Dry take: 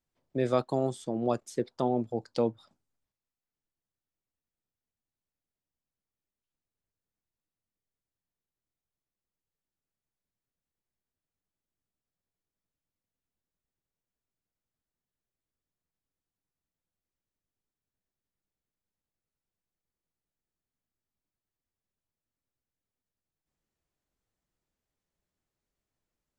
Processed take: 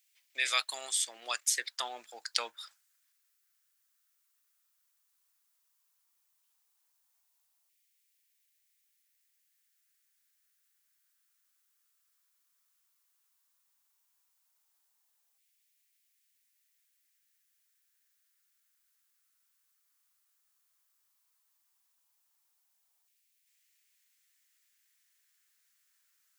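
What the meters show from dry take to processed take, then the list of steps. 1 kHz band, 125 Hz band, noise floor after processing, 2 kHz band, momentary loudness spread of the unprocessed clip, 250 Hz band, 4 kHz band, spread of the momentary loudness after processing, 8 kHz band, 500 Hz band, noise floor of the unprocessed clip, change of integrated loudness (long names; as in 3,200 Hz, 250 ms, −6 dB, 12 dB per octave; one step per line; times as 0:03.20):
−5.0 dB, below −40 dB, −76 dBFS, +14.0 dB, 5 LU, −31.5 dB, +16.0 dB, 14 LU, +18.5 dB, −19.0 dB, below −85 dBFS, −1.5 dB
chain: high-shelf EQ 3,800 Hz +7 dB
auto-filter high-pass saw down 0.13 Hz 810–2,300 Hz
spectral tilt +2.5 dB per octave
level +5 dB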